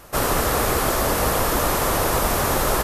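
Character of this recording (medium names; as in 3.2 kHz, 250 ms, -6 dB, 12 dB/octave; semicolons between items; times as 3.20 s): noise floor -29 dBFS; spectral tilt -3.5 dB/octave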